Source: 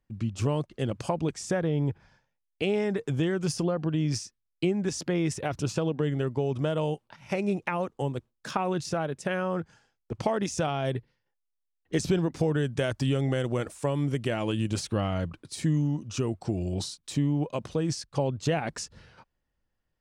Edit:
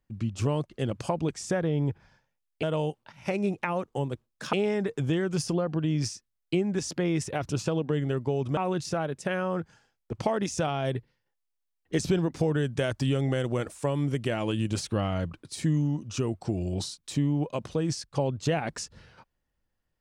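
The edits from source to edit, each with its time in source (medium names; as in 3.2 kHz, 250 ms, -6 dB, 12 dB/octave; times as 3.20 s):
6.67–8.57 s: move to 2.63 s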